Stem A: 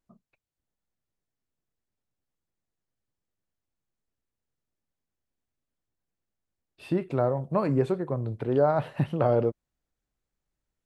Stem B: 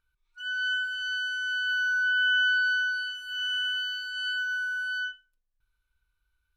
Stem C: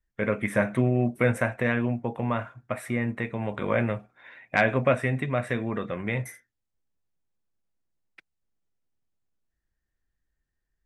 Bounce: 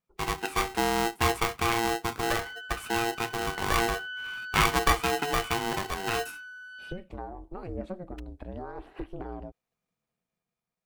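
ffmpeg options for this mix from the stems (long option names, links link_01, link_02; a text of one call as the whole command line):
ffmpeg -i stem1.wav -i stem2.wav -i stem3.wav -filter_complex "[0:a]acompressor=threshold=-31dB:ratio=2.5,aeval=exprs='val(0)*sin(2*PI*180*n/s)':channel_layout=same,aphaser=in_gain=1:out_gain=1:delay=1.2:decay=0.37:speed=0.89:type=sinusoidal,volume=-8.5dB[link_01];[1:a]tremolo=f=200:d=0.182,adelay=1850,volume=-16.5dB[link_02];[2:a]highpass=frequency=75:width=0.5412,highpass=frequency=75:width=1.3066,aeval=exprs='val(0)*sgn(sin(2*PI*580*n/s))':channel_layout=same,volume=-4.5dB[link_03];[link_01][link_02][link_03]amix=inputs=3:normalize=0,dynaudnorm=framelen=360:gausssize=7:maxgain=3.5dB" out.wav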